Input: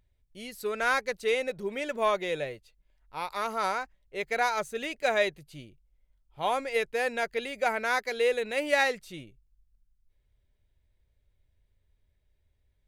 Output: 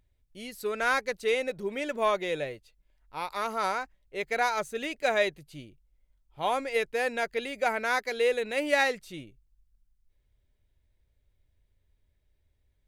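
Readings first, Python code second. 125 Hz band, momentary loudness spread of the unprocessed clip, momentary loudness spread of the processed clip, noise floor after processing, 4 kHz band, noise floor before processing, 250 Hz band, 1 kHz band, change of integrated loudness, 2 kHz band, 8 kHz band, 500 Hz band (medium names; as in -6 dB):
0.0 dB, 16 LU, 16 LU, -73 dBFS, 0.0 dB, -73 dBFS, +1.5 dB, 0.0 dB, 0.0 dB, 0.0 dB, 0.0 dB, 0.0 dB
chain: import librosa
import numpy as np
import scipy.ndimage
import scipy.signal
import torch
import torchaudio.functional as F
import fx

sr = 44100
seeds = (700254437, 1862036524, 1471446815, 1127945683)

y = fx.peak_eq(x, sr, hz=290.0, db=3.0, octaves=0.42)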